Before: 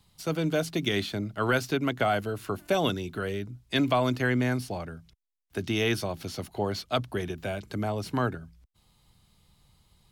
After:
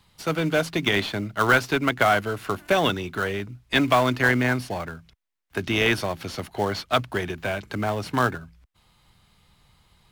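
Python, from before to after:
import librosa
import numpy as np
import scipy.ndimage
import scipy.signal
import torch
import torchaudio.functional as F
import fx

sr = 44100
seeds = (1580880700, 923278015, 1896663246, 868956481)

p1 = fx.peak_eq(x, sr, hz=1700.0, db=10.0, octaves=2.1)
p2 = fx.sample_hold(p1, sr, seeds[0], rate_hz=2500.0, jitter_pct=20)
y = p1 + F.gain(torch.from_numpy(p2), -11.5).numpy()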